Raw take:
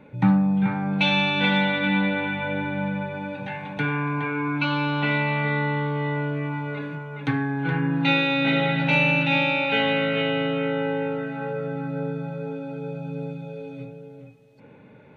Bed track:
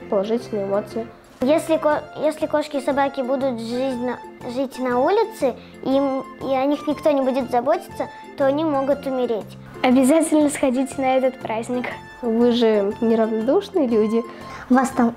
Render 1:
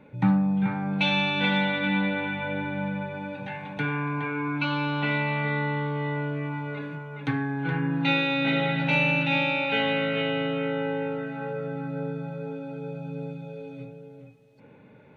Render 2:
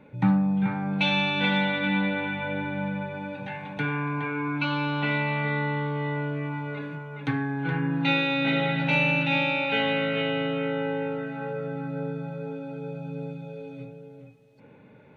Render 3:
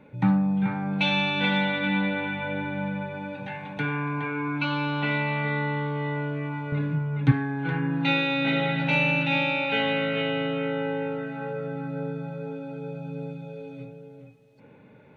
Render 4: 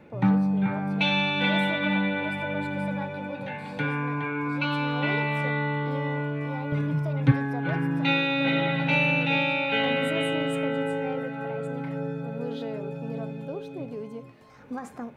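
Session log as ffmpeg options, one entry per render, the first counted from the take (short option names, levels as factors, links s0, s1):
-af "volume=0.708"
-af anull
-filter_complex "[0:a]asettb=1/sr,asplit=3[s0][s1][s2];[s0]atrim=end=6.724[s3];[s1]atrim=start=6.72:end=7.32,asetpts=PTS-STARTPTS,afade=t=in:d=0.004:c=qsin,afade=t=out:st=0.596:d=0.004:c=qsin,bass=f=250:g=14,treble=f=4000:g=-3[s4];[s2]atrim=start=7.316[s5];[s3][s4]acrossfade=d=0.004:c1=hsin:c2=qsin[s6];[s6][s5]acrossfade=d=0.004:c1=qsin:c2=hsin"
-filter_complex "[1:a]volume=0.106[s0];[0:a][s0]amix=inputs=2:normalize=0"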